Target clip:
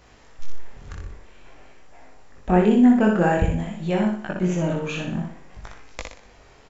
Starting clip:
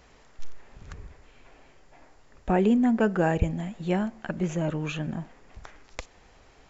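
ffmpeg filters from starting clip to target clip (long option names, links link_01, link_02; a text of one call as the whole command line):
ffmpeg -i in.wav -af "aecho=1:1:61|122|183|244|305:0.631|0.265|0.111|0.0467|0.0196,flanger=delay=18.5:depth=5.6:speed=0.51,volume=6dB" out.wav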